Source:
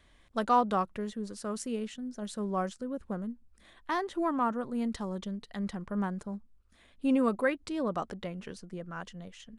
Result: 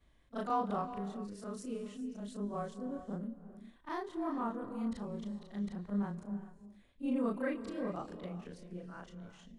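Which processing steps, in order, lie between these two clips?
short-time reversal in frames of 79 ms; tilt shelf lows +3.5 dB, about 630 Hz; non-linear reverb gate 0.44 s rising, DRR 11 dB; gain -4.5 dB

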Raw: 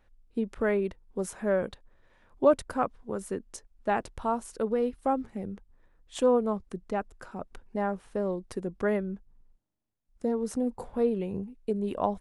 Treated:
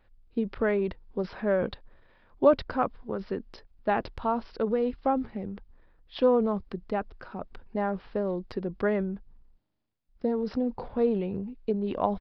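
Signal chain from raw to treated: downsampling 11025 Hz; transient shaper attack +2 dB, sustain +6 dB

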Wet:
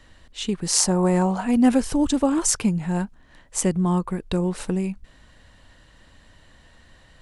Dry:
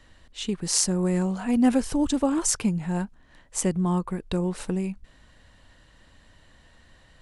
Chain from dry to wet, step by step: 0.78–1.41 bell 840 Hz +11.5 dB 1.1 oct; gain +3 dB

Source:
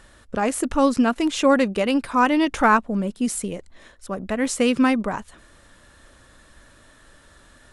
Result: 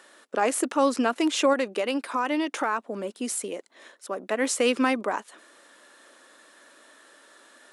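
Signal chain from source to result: HPF 300 Hz 24 dB/oct; limiter -12 dBFS, peak gain reduction 7.5 dB; 1.53–4.16 compressor 1.5:1, threshold -29 dBFS, peak gain reduction 4.5 dB

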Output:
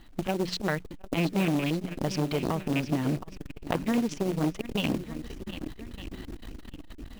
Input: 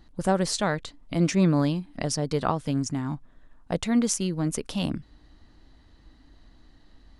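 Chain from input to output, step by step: rattling part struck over -25 dBFS, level -23 dBFS; AGC gain up to 12 dB; LFO low-pass square 4.4 Hz 360–3000 Hz; notches 60/120/180 Hz; short-mantissa float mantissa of 2-bit; compressor 6:1, threshold -26 dBFS, peak gain reduction 19 dB; swung echo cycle 1.2 s, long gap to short 1.5:1, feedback 34%, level -12.5 dB; core saturation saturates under 630 Hz; gain +3 dB

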